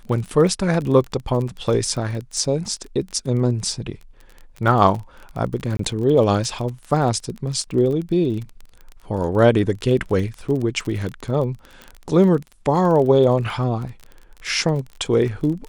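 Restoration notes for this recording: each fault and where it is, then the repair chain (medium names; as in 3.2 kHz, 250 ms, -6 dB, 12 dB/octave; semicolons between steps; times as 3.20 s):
crackle 26 per s -27 dBFS
5.77–5.79 s: dropout 23 ms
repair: de-click; interpolate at 5.77 s, 23 ms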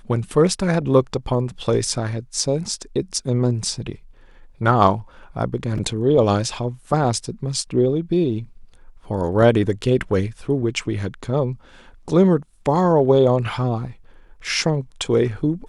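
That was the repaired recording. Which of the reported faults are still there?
nothing left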